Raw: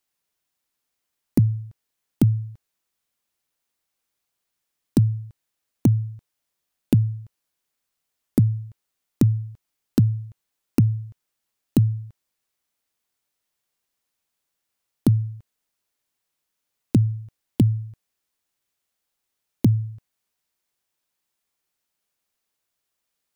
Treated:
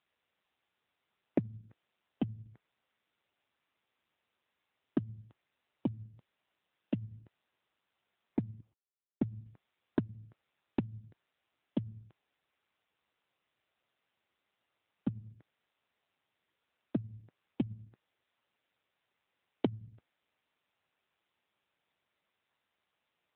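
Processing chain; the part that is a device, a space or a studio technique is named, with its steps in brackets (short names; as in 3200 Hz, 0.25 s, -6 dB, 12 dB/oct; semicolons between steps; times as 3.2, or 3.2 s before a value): 8.6–9.44 gate with hold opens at -29 dBFS; voicemail (BPF 310–3000 Hz; compressor 10:1, threshold -27 dBFS, peak gain reduction 9.5 dB; gain +3 dB; AMR-NB 7.95 kbps 8000 Hz)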